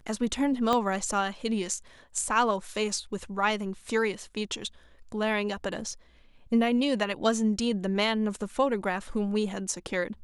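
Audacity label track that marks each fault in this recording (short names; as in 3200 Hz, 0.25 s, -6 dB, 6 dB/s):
0.730000	0.730000	pop -13 dBFS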